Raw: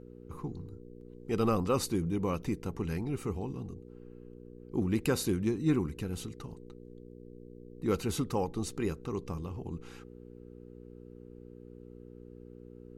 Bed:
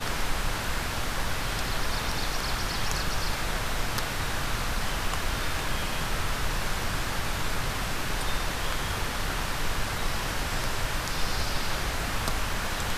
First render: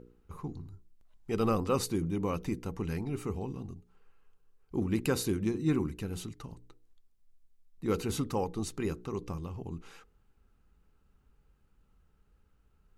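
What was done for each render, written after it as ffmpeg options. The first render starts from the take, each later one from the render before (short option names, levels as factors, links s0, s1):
-af "bandreject=f=60:t=h:w=4,bandreject=f=120:t=h:w=4,bandreject=f=180:t=h:w=4,bandreject=f=240:t=h:w=4,bandreject=f=300:t=h:w=4,bandreject=f=360:t=h:w=4,bandreject=f=420:t=h:w=4,bandreject=f=480:t=h:w=4"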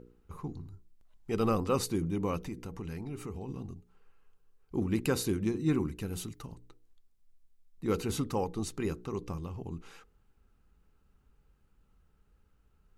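-filter_complex "[0:a]asettb=1/sr,asplit=3[s0][s1][s2];[s0]atrim=end=2.434[s3];[s1]atrim=start=2.43:end=3.49,asetpts=PTS-STARTPTS,afade=t=in:d=0.004:c=qsin,afade=t=out:st=1.056:d=0.004:c=qsin,acompressor=threshold=0.0141:ratio=2.5:attack=3.2:release=140:knee=1:detection=peak[s4];[s2]atrim=start=3.486[s5];[s3][s4]acrossfade=d=0.004:c1=hsin:c2=qsin[s6];[s6][s5]acrossfade=d=0.004:c1=qsin:c2=hsin,asettb=1/sr,asplit=3[s7][s8][s9];[s7]atrim=end=6.014[s10];[s8]atrim=start=6.01:end=6.47,asetpts=PTS-STARTPTS,afade=t=in:d=0.004:c=qsin,afade=t=out:st=0.456:d=0.004:c=qsin,highshelf=f=9900:g=9.5[s11];[s9]atrim=start=6.466[s12];[s10][s11]acrossfade=d=0.004:c1=hsin:c2=qsin[s13];[s13][s12]acrossfade=d=0.004:c1=qsin:c2=hsin"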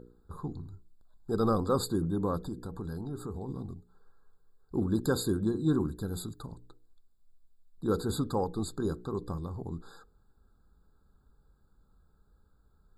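-filter_complex "[0:a]asplit=2[s0][s1];[s1]asoftclip=type=tanh:threshold=0.0596,volume=0.251[s2];[s0][s2]amix=inputs=2:normalize=0,afftfilt=real='re*eq(mod(floor(b*sr/1024/1700),2),0)':imag='im*eq(mod(floor(b*sr/1024/1700),2),0)':win_size=1024:overlap=0.75"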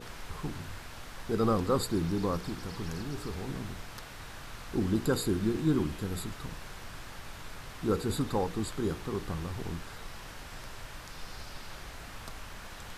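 -filter_complex "[1:a]volume=0.178[s0];[0:a][s0]amix=inputs=2:normalize=0"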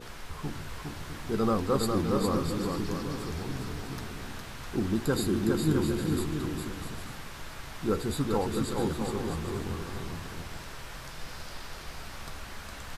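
-filter_complex "[0:a]asplit=2[s0][s1];[s1]adelay=14,volume=0.299[s2];[s0][s2]amix=inputs=2:normalize=0,asplit=2[s3][s4];[s4]aecho=0:1:410|656|803.6|892.2|945.3:0.631|0.398|0.251|0.158|0.1[s5];[s3][s5]amix=inputs=2:normalize=0"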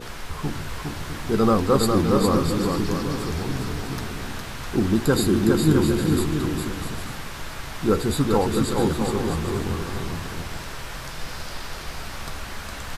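-af "volume=2.51"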